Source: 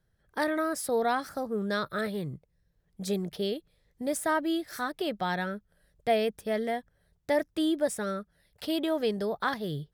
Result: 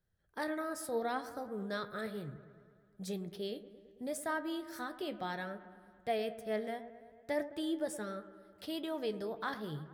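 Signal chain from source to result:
on a send: delay with a low-pass on its return 109 ms, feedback 69%, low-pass 1,800 Hz, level −14 dB
on the sum: flanger 0.68 Hz, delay 9.8 ms, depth 4.6 ms, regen +66%
level −4.5 dB

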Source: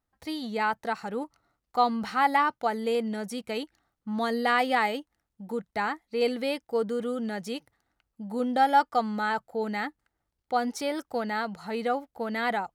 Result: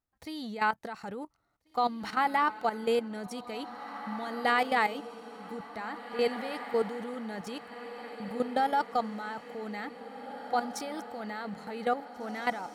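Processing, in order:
output level in coarse steps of 13 dB
feedback delay with all-pass diffusion 1,880 ms, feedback 55%, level −12 dB
level +1 dB

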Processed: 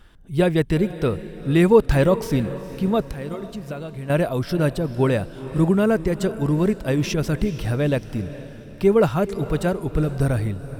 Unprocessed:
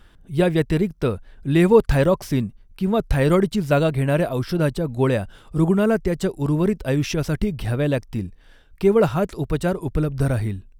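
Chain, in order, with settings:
0:03.02–0:04.10: downward compressor 6 to 1, threshold −30 dBFS, peak gain reduction 16.5 dB
feedback delay with all-pass diffusion 451 ms, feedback 46%, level −14.5 dB

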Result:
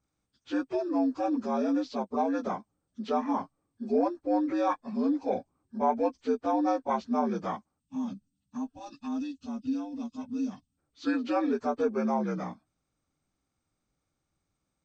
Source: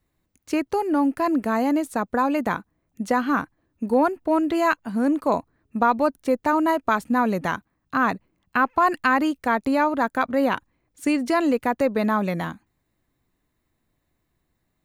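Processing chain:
partials spread apart or drawn together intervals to 80%
gain on a spectral selection 0:07.80–0:10.78, 280–2,500 Hz −19 dB
level −5.5 dB

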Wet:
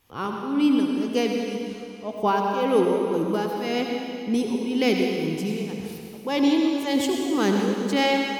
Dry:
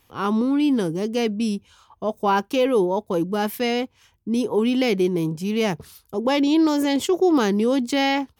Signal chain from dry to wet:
shaped tremolo triangle 1.9 Hz, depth 100%
on a send: convolution reverb RT60 2.7 s, pre-delay 70 ms, DRR 1 dB

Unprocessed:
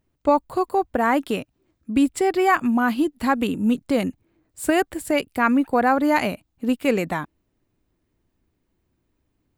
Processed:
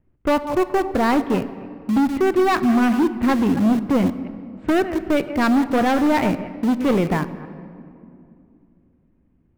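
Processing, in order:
delay that plays each chunk backwards 138 ms, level −14 dB
low-pass filter 2,500 Hz 24 dB per octave
low-shelf EQ 420 Hz +8.5 dB
in parallel at −4.5 dB: centre clipping without the shift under −21 dBFS
on the sum: pitch vibrato 0.85 Hz 9.3 cents
soft clipping −14 dBFS, distortion −9 dB
on a send at −13 dB: convolution reverb RT60 2.6 s, pre-delay 6 ms

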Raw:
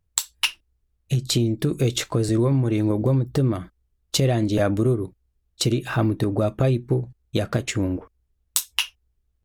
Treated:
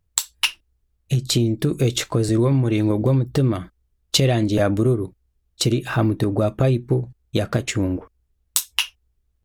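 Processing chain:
0:02.41–0:04.43: dynamic equaliser 3,100 Hz, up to +5 dB, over −43 dBFS, Q 1
level +2 dB

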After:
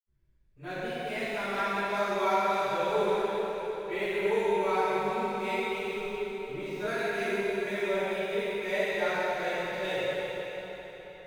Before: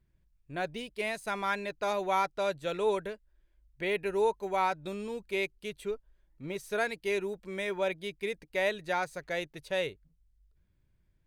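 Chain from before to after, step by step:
running median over 5 samples
convolution reverb RT60 4.4 s, pre-delay 65 ms, DRR −60 dB
level +3 dB

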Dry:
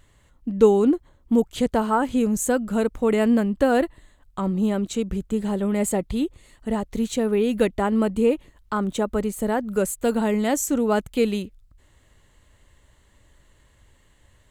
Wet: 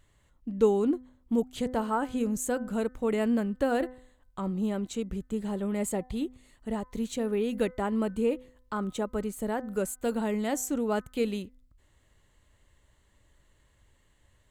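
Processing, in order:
hum removal 253.4 Hz, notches 8
level −7.5 dB

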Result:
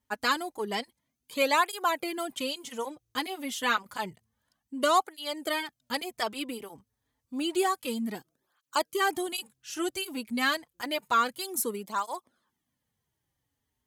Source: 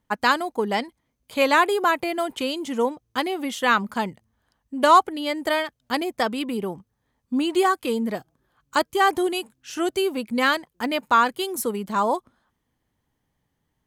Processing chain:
high-shelf EQ 3,000 Hz +9.5 dB
through-zero flanger with one copy inverted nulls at 0.29 Hz, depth 6.2 ms
level −6 dB

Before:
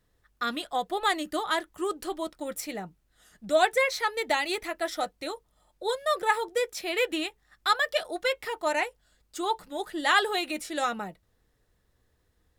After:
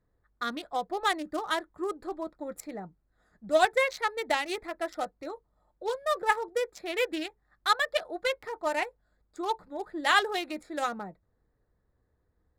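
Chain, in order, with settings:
adaptive Wiener filter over 15 samples
harmonic generator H 7 −29 dB, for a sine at −9 dBFS

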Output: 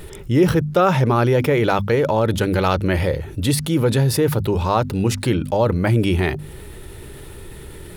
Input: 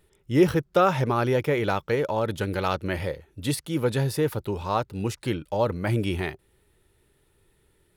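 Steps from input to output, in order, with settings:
low-shelf EQ 330 Hz +5 dB
mains-hum notches 50/100/150/200/250 Hz
envelope flattener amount 50%

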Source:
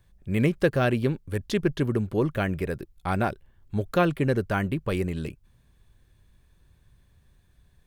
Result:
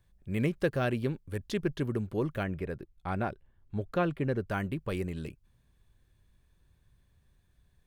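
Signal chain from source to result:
0:02.43–0:04.48: high-shelf EQ 4,800 Hz −12 dB
level −6.5 dB

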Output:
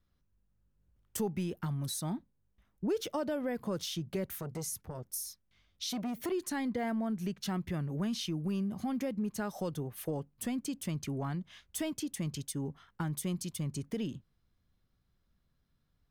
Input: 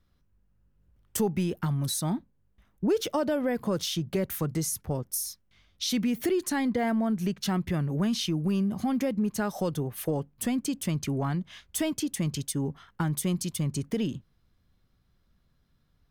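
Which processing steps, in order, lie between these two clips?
0:04.28–0:06.32: saturating transformer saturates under 500 Hz
level −7 dB

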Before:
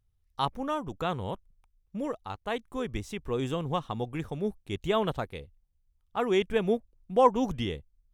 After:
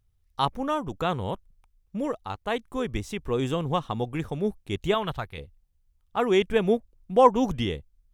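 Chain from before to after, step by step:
0:04.94–0:05.38: octave-band graphic EQ 250/500/8,000 Hz −8/−8/−6 dB
level +4 dB

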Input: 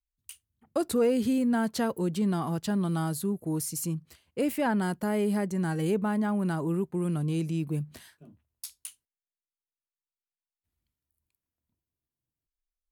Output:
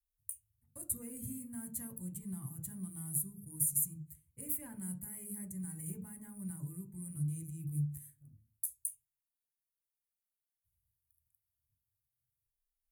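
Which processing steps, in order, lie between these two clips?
drawn EQ curve 110 Hz 0 dB, 360 Hz −29 dB, 5,000 Hz −26 dB, 9,700 Hz +11 dB
convolution reverb RT60 0.40 s, pre-delay 3 ms, DRR 6 dB
level −6 dB

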